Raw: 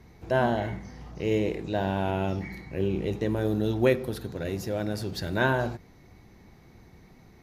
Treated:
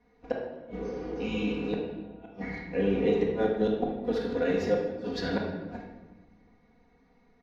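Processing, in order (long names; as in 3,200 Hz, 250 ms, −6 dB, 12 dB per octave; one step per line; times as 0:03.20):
healed spectral selection 0:00.67–0:01.63, 310–2,200 Hz after
noise gate −40 dBFS, range −14 dB
bass and treble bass −9 dB, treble +1 dB
comb filter 4.2 ms, depth 90%
gate with flip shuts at −18 dBFS, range −37 dB
high-frequency loss of the air 200 metres
rectangular room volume 830 cubic metres, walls mixed, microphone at 1.9 metres
level +1 dB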